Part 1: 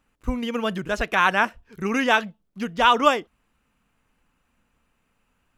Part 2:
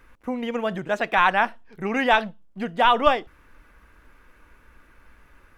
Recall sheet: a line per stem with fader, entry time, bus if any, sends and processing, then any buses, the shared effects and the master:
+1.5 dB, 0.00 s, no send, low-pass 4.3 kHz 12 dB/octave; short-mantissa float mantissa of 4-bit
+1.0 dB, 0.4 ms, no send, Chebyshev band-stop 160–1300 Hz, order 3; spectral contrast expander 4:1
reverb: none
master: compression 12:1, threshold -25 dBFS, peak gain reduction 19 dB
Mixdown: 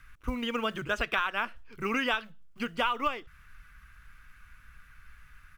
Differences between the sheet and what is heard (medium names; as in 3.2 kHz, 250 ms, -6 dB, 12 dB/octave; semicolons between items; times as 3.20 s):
stem 1 +1.5 dB -> -5.0 dB; stem 2: missing spectral contrast expander 4:1